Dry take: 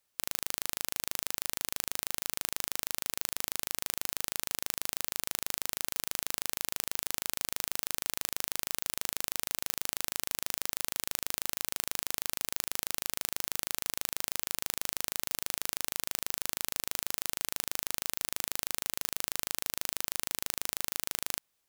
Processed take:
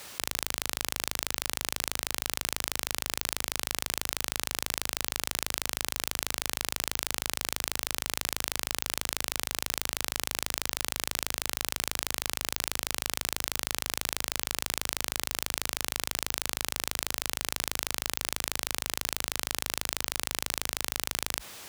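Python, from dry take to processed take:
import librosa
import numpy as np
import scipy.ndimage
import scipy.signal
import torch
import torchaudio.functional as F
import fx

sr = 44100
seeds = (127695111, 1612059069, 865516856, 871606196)

y = scipy.signal.sosfilt(scipy.signal.butter(4, 51.0, 'highpass', fs=sr, output='sos'), x)
y = fx.high_shelf(y, sr, hz=8600.0, db=-8.0)
y = fx.env_flatten(y, sr, amount_pct=70)
y = y * librosa.db_to_amplitude(6.5)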